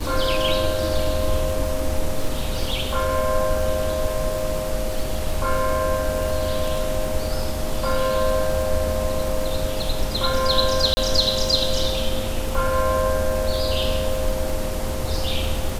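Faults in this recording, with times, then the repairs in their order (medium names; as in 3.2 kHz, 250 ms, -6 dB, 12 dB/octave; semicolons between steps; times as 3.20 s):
crackle 34 per s -25 dBFS
10.94–10.97 s: dropout 30 ms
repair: de-click; interpolate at 10.94 s, 30 ms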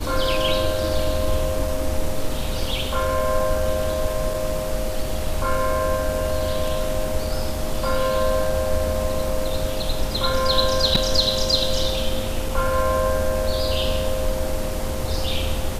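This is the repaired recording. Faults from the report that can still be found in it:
nothing left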